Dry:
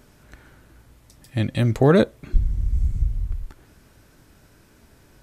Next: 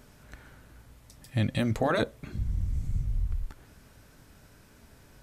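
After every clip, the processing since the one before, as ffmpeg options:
-filter_complex "[0:a]afftfilt=real='re*lt(hypot(re,im),1.12)':imag='im*lt(hypot(re,im),1.12)':win_size=1024:overlap=0.75,equalizer=f=340:t=o:w=0.32:g=-5.5,asplit=2[s0][s1];[s1]alimiter=limit=0.1:level=0:latency=1:release=30,volume=0.891[s2];[s0][s2]amix=inputs=2:normalize=0,volume=0.447"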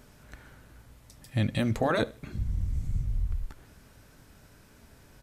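-af "aecho=1:1:76|152:0.075|0.0247"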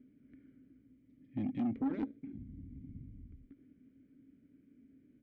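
-filter_complex "[0:a]asplit=3[s0][s1][s2];[s0]bandpass=f=270:t=q:w=8,volume=1[s3];[s1]bandpass=f=2290:t=q:w=8,volume=0.501[s4];[s2]bandpass=f=3010:t=q:w=8,volume=0.355[s5];[s3][s4][s5]amix=inputs=3:normalize=0,adynamicsmooth=sensitivity=1.5:basefreq=830,asoftclip=type=tanh:threshold=0.0168,volume=2.24"

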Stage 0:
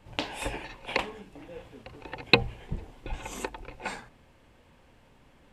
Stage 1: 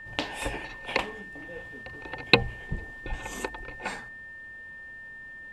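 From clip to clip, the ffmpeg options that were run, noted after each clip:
-af "aeval=exprs='val(0)+0.00794*sin(2*PI*1800*n/s)':c=same,volume=1.12"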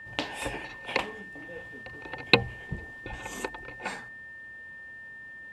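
-af "highpass=62,volume=0.891"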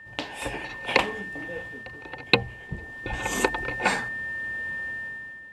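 -af "dynaudnorm=f=180:g=7:m=5.01,volume=0.891"

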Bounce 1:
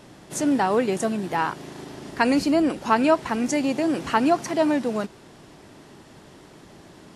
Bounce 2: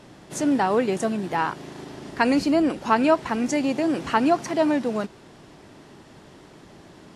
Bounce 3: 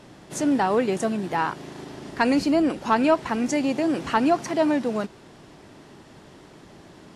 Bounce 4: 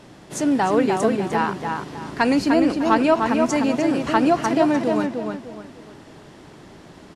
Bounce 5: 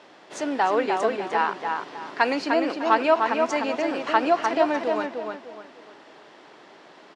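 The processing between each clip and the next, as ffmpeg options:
-af "highshelf=f=9800:g=-8"
-af "asoftclip=type=tanh:threshold=0.473"
-filter_complex "[0:a]asplit=2[s0][s1];[s1]adelay=302,lowpass=f=3200:p=1,volume=0.631,asplit=2[s2][s3];[s3]adelay=302,lowpass=f=3200:p=1,volume=0.33,asplit=2[s4][s5];[s5]adelay=302,lowpass=f=3200:p=1,volume=0.33,asplit=2[s6][s7];[s7]adelay=302,lowpass=f=3200:p=1,volume=0.33[s8];[s0][s2][s4][s6][s8]amix=inputs=5:normalize=0,volume=1.26"
-af "highpass=490,lowpass=4500"

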